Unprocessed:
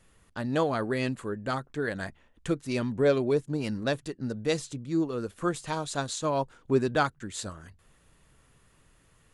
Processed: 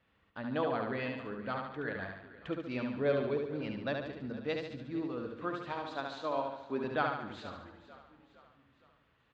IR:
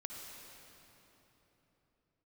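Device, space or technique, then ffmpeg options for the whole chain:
frequency-shifting delay pedal into a guitar cabinet: -filter_complex "[0:a]asettb=1/sr,asplit=3[s0][s1][s2];[s0]atrim=end=5.724[s3];[s1]atrim=start=5.72:end=6.84,asetpts=PTS-STARTPTS,afade=t=in:d=0.004:c=qsin,afade=t=out:st=1.116:d=0.004:c=qsin,highpass=260[s4];[s2]atrim=start=6.836[s5];[s3][s4]acrossfade=d=0.004:c1=hsin:c2=qsin[s6];[s6][s5]acrossfade=d=0.004:c1=qsin:c2=hsin,aecho=1:1:72|144|216|288|360|432|504:0.631|0.322|0.164|0.0837|0.0427|0.0218|0.0111,asplit=5[s7][s8][s9][s10][s11];[s8]adelay=461,afreqshift=-31,volume=0.133[s12];[s9]adelay=922,afreqshift=-62,volume=0.0653[s13];[s10]adelay=1383,afreqshift=-93,volume=0.032[s14];[s11]adelay=1844,afreqshift=-124,volume=0.0157[s15];[s7][s12][s13][s14][s15]amix=inputs=5:normalize=0,highpass=86,equalizer=f=110:t=q:w=4:g=-5,equalizer=f=170:t=q:w=4:g=-7,equalizer=f=380:t=q:w=4:g=-6,lowpass=f=3600:w=0.5412,lowpass=f=3600:w=1.3066,volume=0.473"

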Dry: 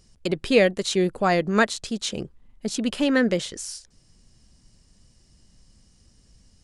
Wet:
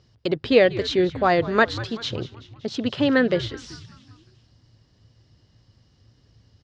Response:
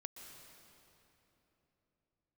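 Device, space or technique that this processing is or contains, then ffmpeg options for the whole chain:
frequency-shifting delay pedal into a guitar cabinet: -filter_complex "[0:a]asplit=6[s0][s1][s2][s3][s4][s5];[s1]adelay=190,afreqshift=-110,volume=0.15[s6];[s2]adelay=380,afreqshift=-220,volume=0.0822[s7];[s3]adelay=570,afreqshift=-330,volume=0.0452[s8];[s4]adelay=760,afreqshift=-440,volume=0.0248[s9];[s5]adelay=950,afreqshift=-550,volume=0.0136[s10];[s0][s6][s7][s8][s9][s10]amix=inputs=6:normalize=0,highpass=82,equalizer=f=110:t=q:w=4:g=10,equalizer=f=200:t=q:w=4:g=-9,equalizer=f=2400:t=q:w=4:g=-5,lowpass=f=4400:w=0.5412,lowpass=f=4400:w=1.3066,volume=1.33"

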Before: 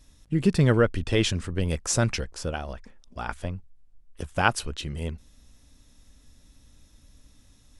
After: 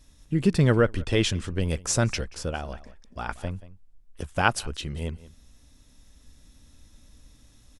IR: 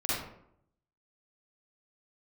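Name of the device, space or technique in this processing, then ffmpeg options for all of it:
ducked delay: -filter_complex "[0:a]asplit=3[s0][s1][s2];[s1]adelay=182,volume=0.631[s3];[s2]apad=whole_len=351608[s4];[s3][s4]sidechaincompress=threshold=0.0112:ratio=6:attack=12:release=1150[s5];[s0][s5]amix=inputs=2:normalize=0"

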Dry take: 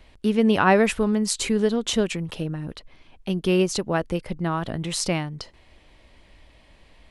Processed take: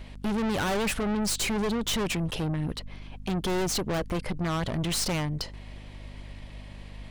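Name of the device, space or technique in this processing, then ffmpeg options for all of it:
valve amplifier with mains hum: -af "aeval=exprs='(tanh(44.7*val(0)+0.4)-tanh(0.4))/44.7':c=same,aeval=exprs='val(0)+0.00355*(sin(2*PI*50*n/s)+sin(2*PI*2*50*n/s)/2+sin(2*PI*3*50*n/s)/3+sin(2*PI*4*50*n/s)/4+sin(2*PI*5*50*n/s)/5)':c=same,volume=2.24"

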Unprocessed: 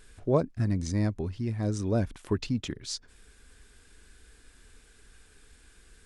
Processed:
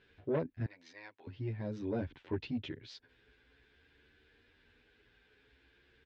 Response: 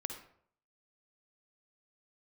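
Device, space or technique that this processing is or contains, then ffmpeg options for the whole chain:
barber-pole flanger into a guitar amplifier: -filter_complex "[0:a]asplit=2[s0][s1];[s1]adelay=10.6,afreqshift=0.47[s2];[s0][s2]amix=inputs=2:normalize=1,asoftclip=type=tanh:threshold=0.0668,highpass=100,equalizer=f=190:t=q:w=4:g=-10,equalizer=f=680:t=q:w=4:g=-4,equalizer=f=1200:t=q:w=4:g=-9,lowpass=f=3500:w=0.5412,lowpass=f=3500:w=1.3066,asettb=1/sr,asplit=3[s3][s4][s5];[s3]atrim=end=0.664[s6];[s4]atrim=start=0.66:end=1.27,asetpts=PTS-STARTPTS,afade=t=in:d=0.004:c=qsin,afade=t=out:st=0.606:d=0.004:c=qsin,highpass=1000[s7];[s5]atrim=start=1.266[s8];[s6][s7]acrossfade=d=0.004:c1=hsin:c2=qsin[s9];[s9][s8]acrossfade=d=0.004:c1=qsin:c2=hsin,volume=0.891"

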